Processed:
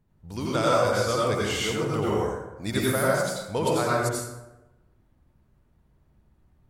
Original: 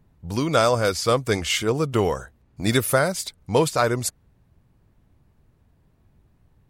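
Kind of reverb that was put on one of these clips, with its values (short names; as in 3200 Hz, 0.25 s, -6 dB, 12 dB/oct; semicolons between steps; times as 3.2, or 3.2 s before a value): plate-style reverb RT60 1 s, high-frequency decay 0.55×, pre-delay 75 ms, DRR -5.5 dB; gain -9.5 dB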